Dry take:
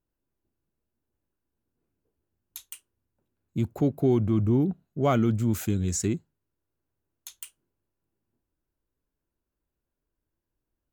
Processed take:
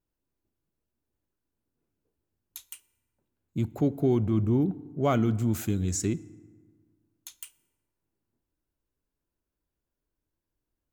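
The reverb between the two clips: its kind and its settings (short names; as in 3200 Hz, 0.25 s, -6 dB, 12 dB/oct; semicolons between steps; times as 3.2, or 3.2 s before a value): FDN reverb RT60 1.7 s, low-frequency decay 1.05×, high-frequency decay 0.5×, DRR 18 dB; gain -1.5 dB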